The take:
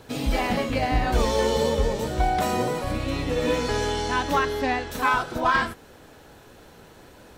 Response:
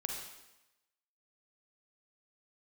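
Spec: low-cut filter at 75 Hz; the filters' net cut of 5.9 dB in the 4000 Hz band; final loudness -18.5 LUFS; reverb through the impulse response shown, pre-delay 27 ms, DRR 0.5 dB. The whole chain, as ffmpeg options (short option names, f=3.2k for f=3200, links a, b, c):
-filter_complex "[0:a]highpass=75,equalizer=f=4k:t=o:g=-8,asplit=2[a][b];[1:a]atrim=start_sample=2205,adelay=27[c];[b][c]afir=irnorm=-1:irlink=0,volume=-1.5dB[d];[a][d]amix=inputs=2:normalize=0,volume=4dB"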